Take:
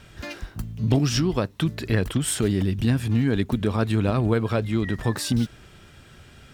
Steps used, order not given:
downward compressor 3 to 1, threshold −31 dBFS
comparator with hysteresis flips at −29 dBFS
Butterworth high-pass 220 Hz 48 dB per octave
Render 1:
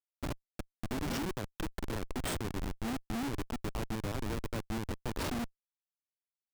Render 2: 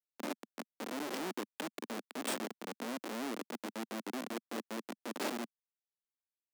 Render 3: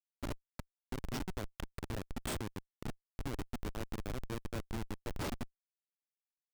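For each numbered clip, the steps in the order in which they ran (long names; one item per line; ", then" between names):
Butterworth high-pass, then downward compressor, then comparator with hysteresis
downward compressor, then comparator with hysteresis, then Butterworth high-pass
downward compressor, then Butterworth high-pass, then comparator with hysteresis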